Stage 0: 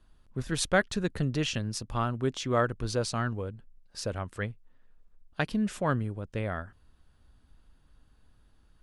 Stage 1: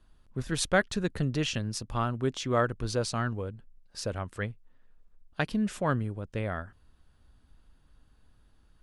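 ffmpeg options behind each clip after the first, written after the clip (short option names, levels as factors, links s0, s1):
-af anull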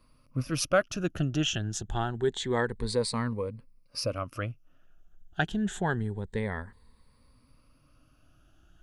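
-filter_complex "[0:a]afftfilt=real='re*pow(10,14/40*sin(2*PI*(0.94*log(max(b,1)*sr/1024/100)/log(2)-(0.27)*(pts-256)/sr)))':imag='im*pow(10,14/40*sin(2*PI*(0.94*log(max(b,1)*sr/1024/100)/log(2)-(0.27)*(pts-256)/sr)))':win_size=1024:overlap=0.75,asplit=2[s0][s1];[s1]acompressor=threshold=0.0178:ratio=6,volume=0.841[s2];[s0][s2]amix=inputs=2:normalize=0,volume=0.668"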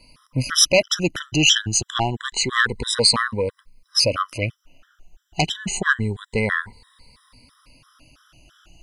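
-af "aeval=exprs='0.266*sin(PI/2*2*val(0)/0.266)':c=same,equalizer=f=4100:w=0.33:g=13,afftfilt=real='re*gt(sin(2*PI*3*pts/sr)*(1-2*mod(floor(b*sr/1024/1000),2)),0)':imag='im*gt(sin(2*PI*3*pts/sr)*(1-2*mod(floor(b*sr/1024/1000),2)),0)':win_size=1024:overlap=0.75,volume=0.891"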